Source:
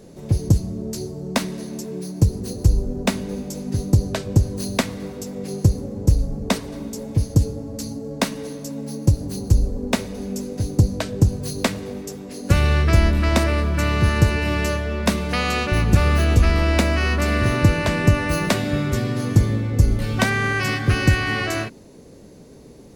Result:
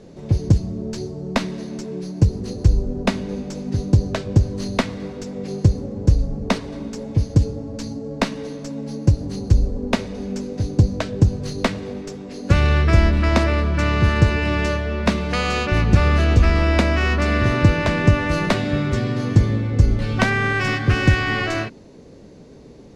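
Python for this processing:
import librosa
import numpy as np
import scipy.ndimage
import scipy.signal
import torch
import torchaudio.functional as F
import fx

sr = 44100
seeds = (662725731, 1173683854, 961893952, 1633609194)

y = fx.tracing_dist(x, sr, depth_ms=0.14)
y = scipy.signal.sosfilt(scipy.signal.butter(2, 5400.0, 'lowpass', fs=sr, output='sos'), y)
y = y * 10.0 ** (1.0 / 20.0)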